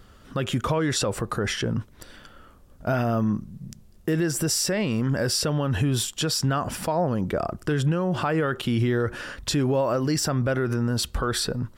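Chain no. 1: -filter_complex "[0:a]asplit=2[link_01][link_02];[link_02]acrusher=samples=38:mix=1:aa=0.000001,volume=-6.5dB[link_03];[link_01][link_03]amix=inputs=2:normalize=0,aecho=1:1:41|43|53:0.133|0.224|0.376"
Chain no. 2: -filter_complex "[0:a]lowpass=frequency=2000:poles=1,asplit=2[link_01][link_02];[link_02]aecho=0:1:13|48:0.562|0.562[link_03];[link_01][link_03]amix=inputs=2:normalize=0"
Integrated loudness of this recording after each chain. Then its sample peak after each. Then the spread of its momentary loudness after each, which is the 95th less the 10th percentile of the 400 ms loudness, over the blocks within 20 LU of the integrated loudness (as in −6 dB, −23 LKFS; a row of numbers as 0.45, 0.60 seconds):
−22.5, −24.0 LKFS; −9.5, −10.0 dBFS; 7, 7 LU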